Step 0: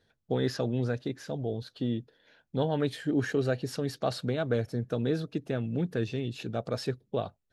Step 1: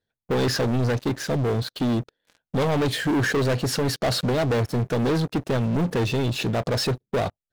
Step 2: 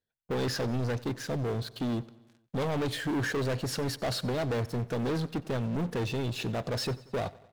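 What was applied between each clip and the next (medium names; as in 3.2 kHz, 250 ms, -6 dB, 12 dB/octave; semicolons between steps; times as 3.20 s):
waveshaping leveller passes 5; trim -3 dB
feedback delay 92 ms, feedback 59%, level -21 dB; trim -8 dB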